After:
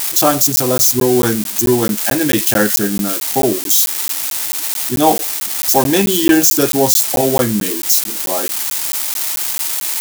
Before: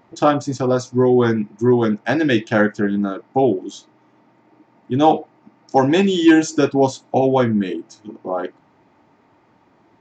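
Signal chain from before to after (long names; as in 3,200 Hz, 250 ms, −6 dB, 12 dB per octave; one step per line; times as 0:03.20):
spike at every zero crossing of −12.5 dBFS
high-shelf EQ 5,000 Hz +8.5 dB
regular buffer underruns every 0.22 s, samples 512, zero, from 0:00.56
level +1 dB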